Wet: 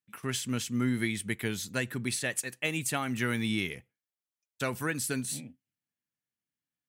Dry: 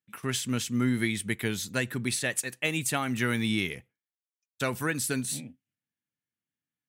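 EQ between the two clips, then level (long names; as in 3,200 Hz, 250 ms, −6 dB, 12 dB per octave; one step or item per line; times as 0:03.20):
notch filter 3,700 Hz, Q 28
−2.5 dB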